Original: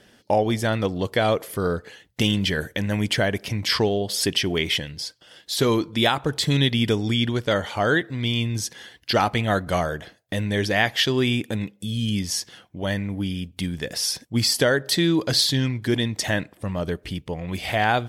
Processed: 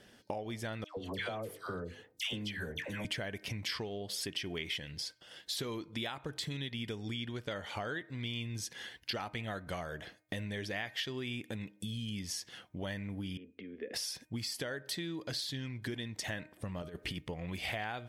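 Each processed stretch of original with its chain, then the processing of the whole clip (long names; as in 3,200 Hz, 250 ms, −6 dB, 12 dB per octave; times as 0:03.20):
0:00.84–0:03.05: mains-hum notches 50/100/150/200/250/300/350/400/450/500 Hz + flanger 1.8 Hz, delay 2.3 ms, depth 1.2 ms, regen −78% + all-pass dispersion lows, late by 128 ms, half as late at 1,100 Hz
0:13.37–0:13.94: downward compressor 10 to 1, threshold −30 dBFS + loudspeaker in its box 210–2,200 Hz, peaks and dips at 220 Hz +7 dB, 440 Hz +9 dB, 1,500 Hz −5 dB + phaser with its sweep stopped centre 370 Hz, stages 4
0:16.82–0:17.26: low-shelf EQ 80 Hz −7 dB + compressor whose output falls as the input rises −31 dBFS, ratio −0.5
whole clip: downward compressor 10 to 1, threshold −31 dBFS; dynamic equaliser 2,300 Hz, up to +4 dB, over −50 dBFS, Q 1.1; hum removal 308.8 Hz, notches 8; level −5.5 dB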